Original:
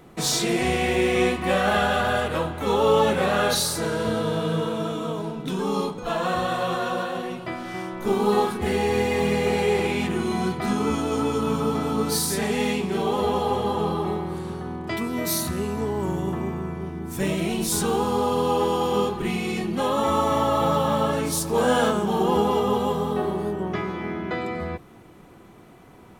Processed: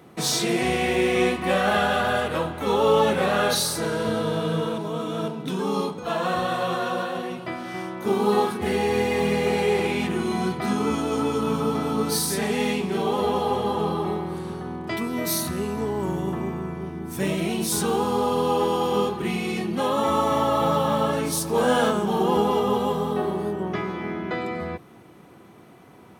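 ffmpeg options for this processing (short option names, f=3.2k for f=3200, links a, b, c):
-filter_complex "[0:a]asplit=3[a][b][c];[a]atrim=end=4.782[d];[b]atrim=start=4.778:end=5.282,asetpts=PTS-STARTPTS,areverse[e];[c]atrim=start=5.278[f];[d][e]acrossfade=d=0.004:c1=hsin:c2=hsin[g];[g][f]acrossfade=d=0.004:c1=hsin:c2=hsin,highpass=96,bandreject=f=7.2k:w=13"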